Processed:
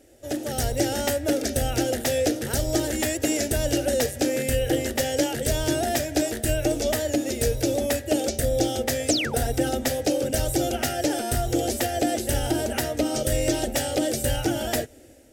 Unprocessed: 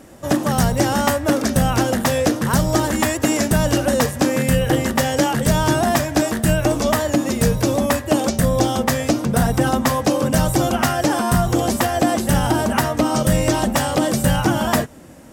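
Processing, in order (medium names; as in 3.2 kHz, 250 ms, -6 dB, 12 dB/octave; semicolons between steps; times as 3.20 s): level rider; painted sound fall, 9.08–9.35 s, 700–9400 Hz -16 dBFS; static phaser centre 440 Hz, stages 4; trim -8.5 dB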